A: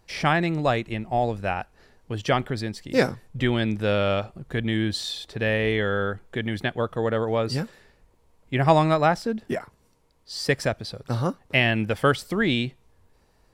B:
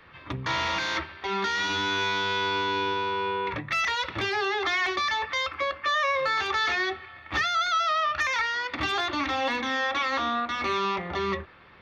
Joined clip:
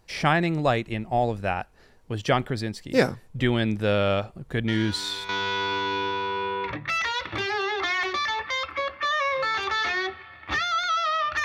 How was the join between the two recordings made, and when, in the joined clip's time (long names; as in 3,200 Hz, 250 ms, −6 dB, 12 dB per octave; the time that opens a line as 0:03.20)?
A
0:04.68: mix in B from 0:01.51 0.61 s −11 dB
0:05.29: continue with B from 0:02.12